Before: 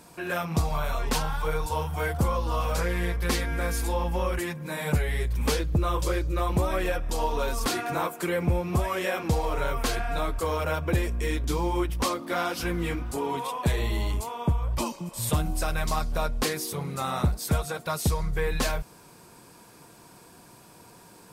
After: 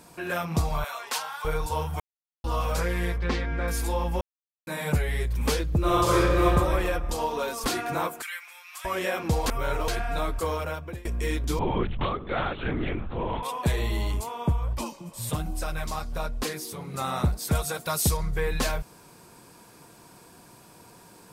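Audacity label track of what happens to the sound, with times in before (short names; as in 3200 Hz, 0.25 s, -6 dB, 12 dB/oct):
0.840000	1.450000	HPF 850 Hz
2.000000	2.440000	mute
3.180000	3.680000	air absorption 180 m
4.210000	4.670000	mute
5.790000	6.440000	reverb throw, RT60 1.9 s, DRR -7 dB
7.130000	7.630000	HPF 73 Hz -> 300 Hz
8.220000	8.850000	HPF 1500 Hz 24 dB/oct
9.460000	9.880000	reverse
10.450000	11.050000	fade out, to -23.5 dB
11.590000	13.430000	LPC vocoder at 8 kHz whisper
14.730000	16.940000	flange 1.2 Hz, delay 2.4 ms, depth 8.9 ms, regen -38%
17.550000	18.170000	high shelf 4600 Hz +9 dB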